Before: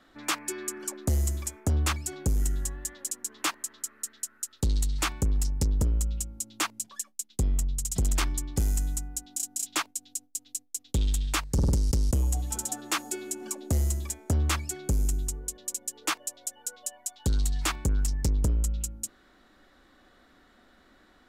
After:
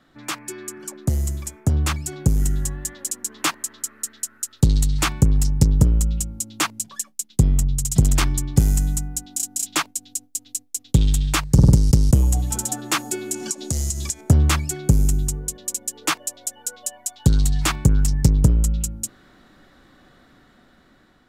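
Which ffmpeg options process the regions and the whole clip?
-filter_complex "[0:a]asettb=1/sr,asplit=3[s0][s1][s2];[s0]atrim=end=13.344[s3];[s1]atrim=start=13.34:end=14.21,asetpts=PTS-STARTPTS,afade=t=in:d=0.004:c=qsin,afade=t=out:st=0.866:d=0.004:c=qsin,equalizer=f=6000:t=o:w=2:g=15,acompressor=threshold=0.0251:ratio=3:attack=3.2:release=140:knee=1:detection=peak[s4];[s2]atrim=start=14.206[s5];[s3][s4]acrossfade=d=0.004:c1=hsin:c2=qsin[s6];[s6][s5]acrossfade=d=0.004:c1=qsin:c2=hsin,equalizer=f=140:t=o:w=0.94:g=11.5,dynaudnorm=f=840:g=5:m=2.51"

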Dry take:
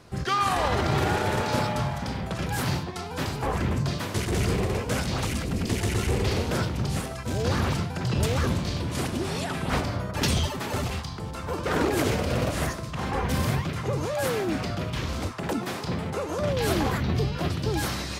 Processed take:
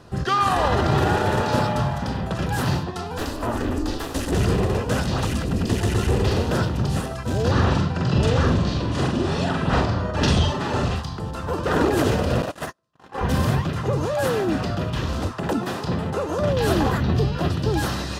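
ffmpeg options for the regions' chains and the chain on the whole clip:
-filter_complex "[0:a]asettb=1/sr,asplit=3[s0][s1][s2];[s0]atrim=end=3.184[s3];[s1]atrim=start=3.18:end=4.32,asetpts=PTS-STARTPTS,afade=t=in:d=0.004:c=qsin,afade=t=out:st=1.136:d=0.004:c=qsin,aeval=exprs='val(0)*sin(2*PI*170*n/s)':c=same,highshelf=f=6400:g=8[s4];[s2]atrim=start=4.316[s5];[s3][s4]acrossfade=d=0.004:c1=hsin:c2=qsin[s6];[s6][s5]acrossfade=d=0.004:c1=qsin:c2=hsin,asettb=1/sr,asplit=3[s7][s8][s9];[s7]atrim=end=7.514[s10];[s8]atrim=start=7.51:end=10.96,asetpts=PTS-STARTPTS,afade=t=in:d=0.004:c=qsin,afade=t=out:st=3.446:d=0.004:c=qsin,lowpass=6300,asplit=2[s11][s12];[s12]adelay=45,volume=0.708[s13];[s11][s13]amix=inputs=2:normalize=0,atrim=end_sample=152145[s14];[s9]atrim=start=10.956[s15];[s10][s14]acrossfade=d=0.004:c1=hsin:c2=qsin[s16];[s16][s15]acrossfade=d=0.004:c1=qsin:c2=hsin,asettb=1/sr,asplit=3[s17][s18][s19];[s17]atrim=end=12.424[s20];[s18]atrim=start=12.42:end=13.21,asetpts=PTS-STARTPTS,afade=t=in:d=0.004:c=qsin,afade=t=out:st=0.786:d=0.004:c=qsin,agate=range=0.00891:threshold=0.0447:ratio=16:release=100:detection=peak,highpass=f=410:p=1,asoftclip=type=hard:threshold=0.0501[s21];[s19]atrim=start=13.206[s22];[s20][s21]acrossfade=d=0.004:c1=hsin:c2=qsin[s23];[s23][s22]acrossfade=d=0.004:c1=qsin:c2=hsin,highshelf=f=3900:g=-6.5,bandreject=f=2200:w=5.5,volume=1.78"

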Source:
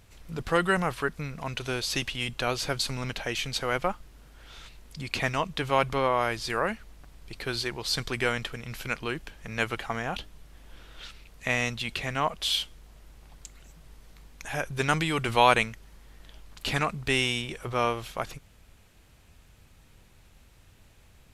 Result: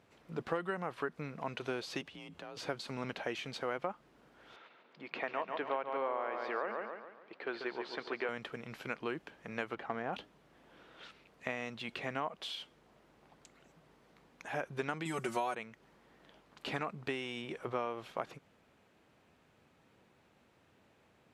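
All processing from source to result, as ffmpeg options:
-filter_complex "[0:a]asettb=1/sr,asplit=3[s0][s1][s2];[s0]atrim=end=2.014[s3];[s1]atrim=start=2.01:end=2.57,asetpts=PTS-STARTPTS,afade=t=in:d=0.004:c=qsin,afade=t=out:st=0.556:d=0.004:c=qsin,aeval=exprs='clip(val(0),-1,0.0501)':c=same,acompressor=threshold=0.0126:ratio=16:attack=3.2:release=140:knee=1:detection=peak,afreqshift=42[s4];[s2]atrim=start=2.566[s5];[s3][s4]acrossfade=d=0.004:c1=hsin:c2=qsin[s6];[s6][s5]acrossfade=d=0.004:c1=qsin:c2=hsin,asettb=1/sr,asplit=3[s7][s8][s9];[s7]atrim=end=4.564[s10];[s8]atrim=start=4.56:end=8.29,asetpts=PTS-STARTPTS,afade=t=in:d=0.004:c=qsin,afade=t=out:st=3.726:d=0.004:c=qsin,highpass=350,lowpass=2800,aecho=1:1:141|282|423|564|705:0.447|0.197|0.0865|0.0381|0.0167,atrim=end_sample=164493[s11];[s9]atrim=start=8.286[s12];[s10][s11]acrossfade=d=0.004:c1=hsin:c2=qsin[s13];[s13][s12]acrossfade=d=0.004:c1=qsin:c2=hsin,asettb=1/sr,asplit=3[s14][s15][s16];[s14]atrim=end=9.734[s17];[s15]atrim=start=9.73:end=10.13,asetpts=PTS-STARTPTS,afade=t=in:d=0.004:c=qsin,afade=t=out:st=0.396:d=0.004:c=qsin,lowpass=f=2000:p=1,aeval=exprs='clip(val(0),-1,0.0355)':c=same[s18];[s16]atrim=start=10.126[s19];[s17][s18]acrossfade=d=0.004:c1=hsin:c2=qsin[s20];[s20][s19]acrossfade=d=0.004:c1=qsin:c2=hsin,asettb=1/sr,asplit=3[s21][s22][s23];[s21]atrim=end=15.054[s24];[s22]atrim=start=15.05:end=15.55,asetpts=PTS-STARTPTS,afade=t=in:d=0.004:c=qsin,afade=t=out:st=0.496:d=0.004:c=qsin,highshelf=f=4900:t=q:w=1.5:g=12,bandreject=f=1100:w=27,aecho=1:1:5.4:0.85,atrim=end_sample=22050[s25];[s23]atrim=start=15.546[s26];[s24][s25]acrossfade=d=0.004:c1=hsin:c2=qsin[s27];[s27][s26]acrossfade=d=0.004:c1=qsin:c2=hsin,highpass=230,acompressor=threshold=0.0398:ratio=20,lowpass=f=1200:p=1,volume=0.891"

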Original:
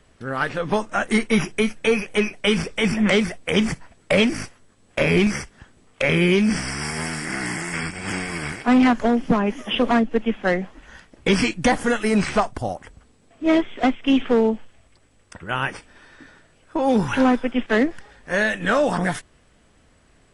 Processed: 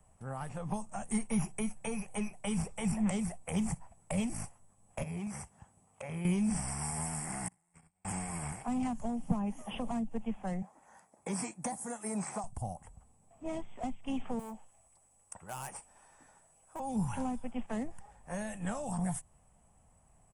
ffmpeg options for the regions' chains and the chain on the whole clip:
-filter_complex "[0:a]asettb=1/sr,asplit=3[s0][s1][s2];[s0]atrim=end=5.034[s3];[s1]atrim=start=5.03:end=6.25,asetpts=PTS-STARTPTS,afade=t=in:d=0.004:c=qsin,afade=t=out:st=1.216:d=0.004:c=qsin,highpass=76,acompressor=threshold=0.0355:ratio=2.5:attack=3.2:release=140:knee=1:detection=peak[s4];[s2]atrim=start=6.246[s5];[s3][s4]acrossfade=d=0.004:c1=hsin:c2=qsin[s6];[s6][s5]acrossfade=d=0.004:c1=qsin:c2=hsin,asettb=1/sr,asplit=3[s7][s8][s9];[s7]atrim=end=7.484[s10];[s8]atrim=start=7.48:end=8.05,asetpts=PTS-STARTPTS,afade=t=in:d=0.004:c=qsin,afade=t=out:st=0.566:d=0.004:c=qsin,agate=range=0.00562:threshold=0.0708:ratio=16:release=100:detection=peak,acontrast=48[s11];[s9]atrim=start=8.046[s12];[s10][s11]acrossfade=d=0.004:c1=hsin:c2=qsin[s13];[s13][s12]acrossfade=d=0.004:c1=qsin:c2=hsin,asettb=1/sr,asplit=3[s14][s15][s16];[s14]atrim=end=10.624[s17];[s15]atrim=start=10.62:end=12.44,asetpts=PTS-STARTPTS,afade=t=in:d=0.004:c=qsin,afade=t=out:st=1.816:d=0.004:c=qsin,highpass=270,equalizer=f=2900:t=o:w=0.38:g=-11[s18];[s16]atrim=start=12.436[s19];[s17][s18]acrossfade=d=0.004:c1=hsin:c2=qsin[s20];[s20][s19]acrossfade=d=0.004:c1=qsin:c2=hsin,asettb=1/sr,asplit=3[s21][s22][s23];[s21]atrim=end=14.394[s24];[s22]atrim=start=14.39:end=16.8,asetpts=PTS-STARTPTS,afade=t=in:d=0.004:c=qsin,afade=t=out:st=2.406:d=0.004:c=qsin,asoftclip=type=hard:threshold=0.0708,bass=f=250:g=-9,treble=f=4000:g=6[s25];[s23]atrim=start=16.796[s26];[s24][s25]acrossfade=d=0.004:c1=hsin:c2=qsin[s27];[s27][s26]acrossfade=d=0.004:c1=qsin:c2=hsin,firequalizer=gain_entry='entry(180,0);entry(290,-12);entry(450,-9);entry(790,5);entry(1500,-13);entry(2600,-11);entry(3900,-20);entry(8000,5)':delay=0.05:min_phase=1,acrossover=split=270|3000[s28][s29][s30];[s29]acompressor=threshold=0.0224:ratio=6[s31];[s28][s31][s30]amix=inputs=3:normalize=0,volume=0.447"

